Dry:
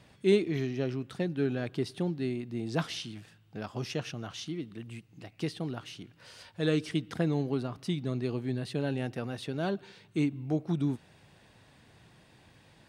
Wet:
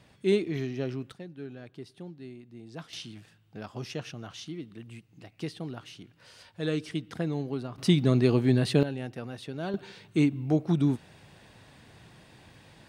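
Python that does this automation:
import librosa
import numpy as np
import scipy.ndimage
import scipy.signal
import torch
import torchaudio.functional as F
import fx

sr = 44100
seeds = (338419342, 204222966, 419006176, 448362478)

y = fx.gain(x, sr, db=fx.steps((0.0, -0.5), (1.12, -11.5), (2.93, -2.0), (7.78, 10.0), (8.83, -2.5), (9.74, 5.0)))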